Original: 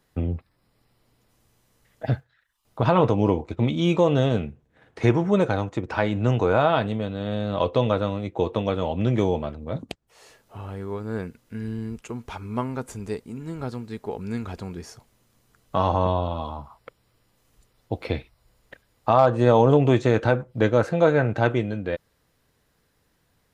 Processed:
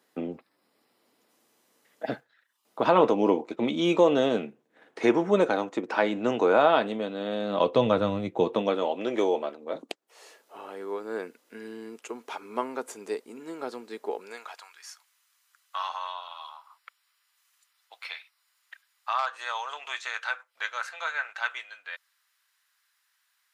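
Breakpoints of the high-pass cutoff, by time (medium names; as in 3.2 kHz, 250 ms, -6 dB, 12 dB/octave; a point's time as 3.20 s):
high-pass 24 dB/octave
7.39 s 240 Hz
8.15 s 110 Hz
8.95 s 320 Hz
14.11 s 320 Hz
14.72 s 1.2 kHz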